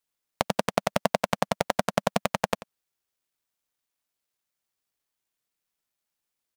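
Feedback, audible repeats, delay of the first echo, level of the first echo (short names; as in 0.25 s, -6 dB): no steady repeat, 1, 88 ms, -16.5 dB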